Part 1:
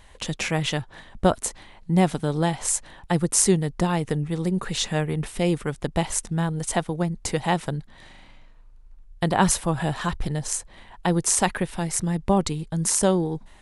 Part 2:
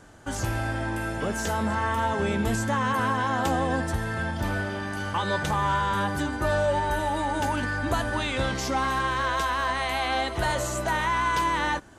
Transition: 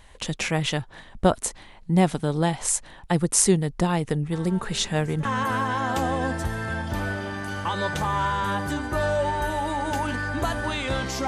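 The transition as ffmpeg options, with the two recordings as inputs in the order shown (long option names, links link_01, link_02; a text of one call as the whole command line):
ffmpeg -i cue0.wav -i cue1.wav -filter_complex "[1:a]asplit=2[link_01][link_02];[0:a]apad=whole_dur=11.27,atrim=end=11.27,atrim=end=5.252[link_03];[link_02]atrim=start=2.738:end=8.76[link_04];[link_01]atrim=start=1.81:end=2.74,asetpts=PTS-STARTPTS,volume=-17dB,afade=type=in:duration=0.004:curve=hsin,afade=type=out:start_time=0.926:duration=0.004:curve=hsin,adelay=4320[link_05];[link_03][link_04]acrossfade=duration=0.004:curve1=hsin:curve2=hsin[link_06];[link_06][link_05]amix=inputs=2:normalize=0" out.wav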